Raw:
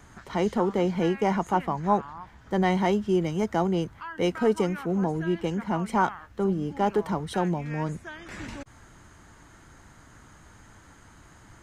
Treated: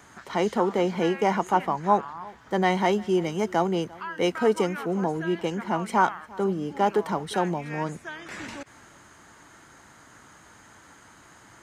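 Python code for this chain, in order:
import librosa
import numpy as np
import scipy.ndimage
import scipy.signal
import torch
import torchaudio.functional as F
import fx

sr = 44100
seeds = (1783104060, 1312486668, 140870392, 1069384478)

y = fx.highpass(x, sr, hz=330.0, slope=6)
y = y + 10.0 ** (-22.5 / 20.0) * np.pad(y, (int(349 * sr / 1000.0), 0))[:len(y)]
y = y * 10.0 ** (3.5 / 20.0)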